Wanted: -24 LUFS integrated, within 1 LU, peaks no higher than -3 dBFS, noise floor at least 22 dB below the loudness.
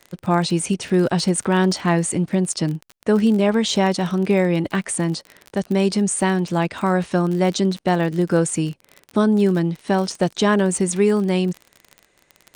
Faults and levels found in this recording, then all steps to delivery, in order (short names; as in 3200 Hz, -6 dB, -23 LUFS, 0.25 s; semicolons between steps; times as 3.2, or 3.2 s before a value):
ticks 36/s; loudness -20.0 LUFS; peak -5.5 dBFS; loudness target -24.0 LUFS
-> de-click; gain -4 dB